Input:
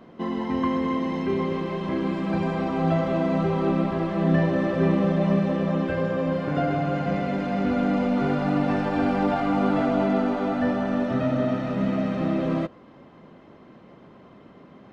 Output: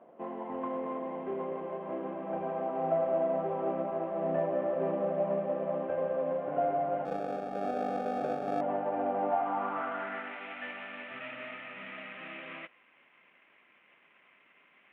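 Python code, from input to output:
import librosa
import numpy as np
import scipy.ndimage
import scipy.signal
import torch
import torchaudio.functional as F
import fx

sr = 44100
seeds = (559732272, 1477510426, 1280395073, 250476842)

y = fx.cvsd(x, sr, bps=16000)
y = fx.sample_hold(y, sr, seeds[0], rate_hz=1000.0, jitter_pct=0, at=(7.05, 8.61))
y = fx.filter_sweep_bandpass(y, sr, from_hz=650.0, to_hz=2300.0, start_s=9.21, end_s=10.43, q=2.6)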